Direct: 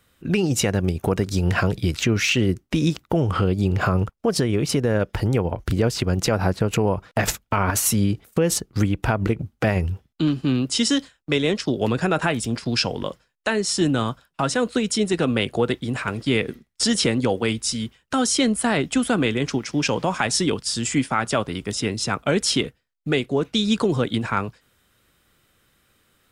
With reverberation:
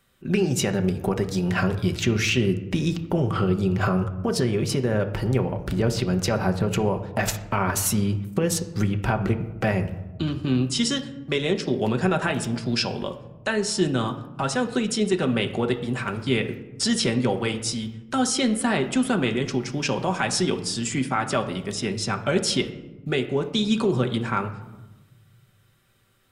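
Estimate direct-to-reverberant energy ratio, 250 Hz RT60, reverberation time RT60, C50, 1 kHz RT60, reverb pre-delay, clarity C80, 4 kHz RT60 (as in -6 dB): 4.5 dB, 1.7 s, 1.1 s, 12.0 dB, 1.0 s, 5 ms, 14.0 dB, 0.60 s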